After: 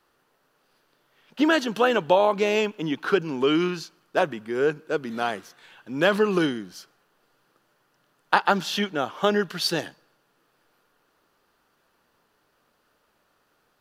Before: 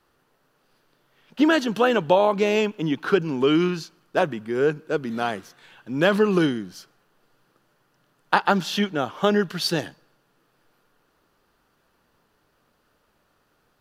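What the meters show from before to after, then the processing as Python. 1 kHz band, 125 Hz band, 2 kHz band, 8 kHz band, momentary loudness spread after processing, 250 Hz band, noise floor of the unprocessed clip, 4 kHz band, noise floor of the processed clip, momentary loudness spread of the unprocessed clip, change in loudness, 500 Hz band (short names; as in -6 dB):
-0.5 dB, -5.0 dB, 0.0 dB, 0.0 dB, 9 LU, -3.0 dB, -68 dBFS, 0.0 dB, -69 dBFS, 9 LU, -1.5 dB, -1.5 dB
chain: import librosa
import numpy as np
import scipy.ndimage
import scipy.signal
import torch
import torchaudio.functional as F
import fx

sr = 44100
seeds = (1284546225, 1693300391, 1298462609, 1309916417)

y = fx.low_shelf(x, sr, hz=210.0, db=-8.5)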